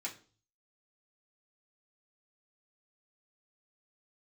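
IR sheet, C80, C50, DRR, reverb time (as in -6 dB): 18.0 dB, 12.5 dB, -5.0 dB, 0.40 s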